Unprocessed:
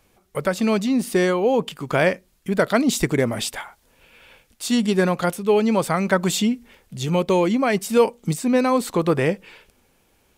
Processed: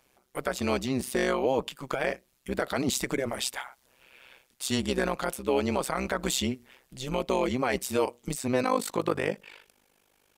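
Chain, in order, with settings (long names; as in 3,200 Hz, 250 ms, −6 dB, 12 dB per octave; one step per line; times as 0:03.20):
low-shelf EQ 240 Hz −11.5 dB
brickwall limiter −13.5 dBFS, peak gain reduction 8 dB
amplitude modulation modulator 130 Hz, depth 85%, from 0:08.62 modulator 50 Hz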